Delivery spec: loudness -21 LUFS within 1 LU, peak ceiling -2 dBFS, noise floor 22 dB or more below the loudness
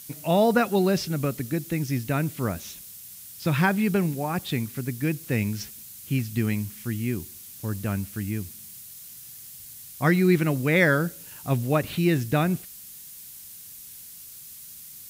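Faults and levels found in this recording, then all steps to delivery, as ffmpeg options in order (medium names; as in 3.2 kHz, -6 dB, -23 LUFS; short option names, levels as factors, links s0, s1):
noise floor -44 dBFS; noise floor target -48 dBFS; loudness -25.5 LUFS; peak level -7.5 dBFS; loudness target -21.0 LUFS
-> -af "afftdn=nr=6:nf=-44"
-af "volume=1.68"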